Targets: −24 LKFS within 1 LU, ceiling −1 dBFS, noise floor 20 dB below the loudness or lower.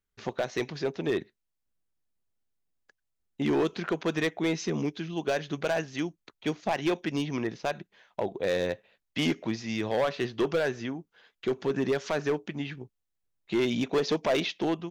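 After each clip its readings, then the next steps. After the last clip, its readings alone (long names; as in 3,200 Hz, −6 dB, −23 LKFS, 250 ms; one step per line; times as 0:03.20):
share of clipped samples 1.1%; peaks flattened at −20.5 dBFS; integrated loudness −30.5 LKFS; sample peak −20.5 dBFS; target loudness −24.0 LKFS
→ clipped peaks rebuilt −20.5 dBFS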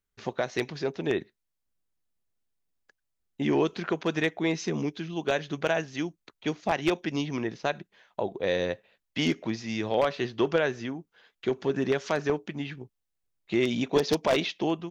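share of clipped samples 0.0%; integrated loudness −29.5 LKFS; sample peak −11.5 dBFS; target loudness −24.0 LKFS
→ level +5.5 dB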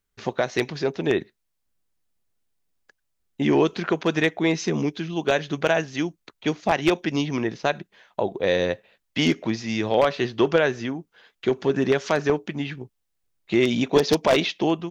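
integrated loudness −24.0 LKFS; sample peak −6.0 dBFS; background noise floor −76 dBFS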